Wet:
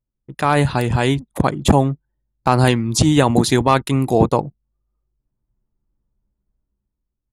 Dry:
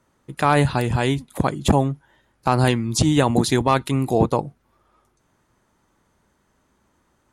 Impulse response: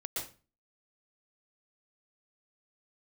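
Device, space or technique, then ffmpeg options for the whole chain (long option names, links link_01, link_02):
voice memo with heavy noise removal: -af "anlmdn=1,dynaudnorm=framelen=160:gausssize=9:maxgain=8dB"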